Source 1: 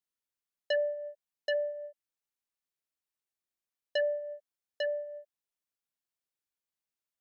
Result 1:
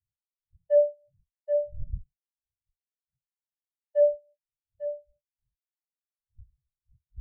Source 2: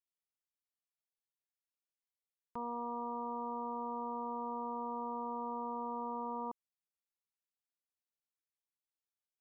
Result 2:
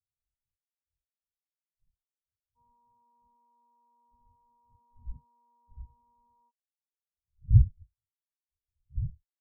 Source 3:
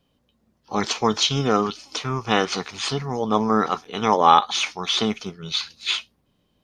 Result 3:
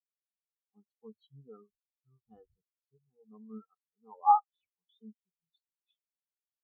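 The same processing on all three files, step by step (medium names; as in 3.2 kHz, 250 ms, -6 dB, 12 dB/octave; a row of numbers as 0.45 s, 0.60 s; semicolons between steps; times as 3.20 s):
wind noise 130 Hz -40 dBFS; spectral contrast expander 4:1; normalise loudness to -27 LUFS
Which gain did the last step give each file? +6.5 dB, +10.0 dB, -10.5 dB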